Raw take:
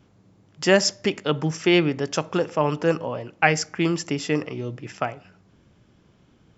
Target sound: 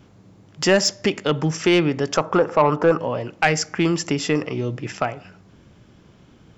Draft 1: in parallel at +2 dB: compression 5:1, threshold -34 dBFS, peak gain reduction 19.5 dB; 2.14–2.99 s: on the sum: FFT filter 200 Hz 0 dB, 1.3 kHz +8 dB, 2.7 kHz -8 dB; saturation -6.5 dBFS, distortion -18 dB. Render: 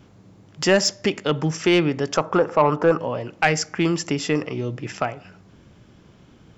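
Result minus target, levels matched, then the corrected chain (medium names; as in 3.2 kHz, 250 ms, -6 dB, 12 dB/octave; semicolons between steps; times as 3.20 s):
compression: peak gain reduction +5 dB
in parallel at +2 dB: compression 5:1, threshold -28 dBFS, peak gain reduction 15 dB; 2.14–2.99 s: on the sum: FFT filter 200 Hz 0 dB, 1.3 kHz +8 dB, 2.7 kHz -8 dB; saturation -6.5 dBFS, distortion -16 dB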